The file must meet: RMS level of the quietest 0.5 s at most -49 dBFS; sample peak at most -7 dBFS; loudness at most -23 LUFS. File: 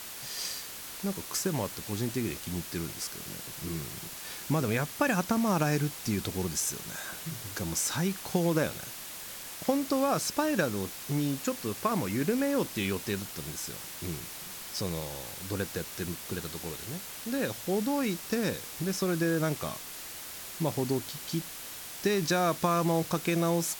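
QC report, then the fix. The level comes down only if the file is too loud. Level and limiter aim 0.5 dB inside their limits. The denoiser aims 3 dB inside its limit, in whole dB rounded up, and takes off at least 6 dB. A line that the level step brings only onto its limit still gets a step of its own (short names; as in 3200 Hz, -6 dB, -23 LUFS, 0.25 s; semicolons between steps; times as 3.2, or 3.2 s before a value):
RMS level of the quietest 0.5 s -42 dBFS: fail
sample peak -11.5 dBFS: OK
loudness -31.5 LUFS: OK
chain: denoiser 10 dB, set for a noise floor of -42 dBFS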